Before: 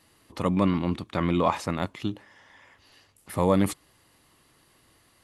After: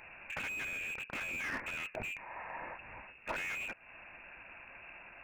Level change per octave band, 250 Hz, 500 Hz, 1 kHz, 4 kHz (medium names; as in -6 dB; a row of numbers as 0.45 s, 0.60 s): -27.0 dB, -20.0 dB, -14.5 dB, -8.0 dB